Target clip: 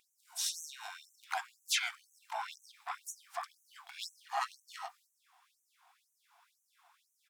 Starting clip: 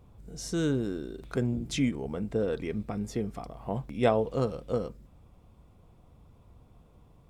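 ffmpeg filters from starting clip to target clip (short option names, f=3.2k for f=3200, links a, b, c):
-filter_complex "[0:a]asplit=4[a][b][c][d];[b]asetrate=29433,aresample=44100,atempo=1.49831,volume=-4dB[e];[c]asetrate=66075,aresample=44100,atempo=0.66742,volume=-7dB[f];[d]asetrate=88200,aresample=44100,atempo=0.5,volume=-16dB[g];[a][e][f][g]amix=inputs=4:normalize=0,afftfilt=real='re*gte(b*sr/1024,660*pow(5900/660,0.5+0.5*sin(2*PI*2*pts/sr)))':imag='im*gte(b*sr/1024,660*pow(5900/660,0.5+0.5*sin(2*PI*2*pts/sr)))':win_size=1024:overlap=0.75,volume=3.5dB"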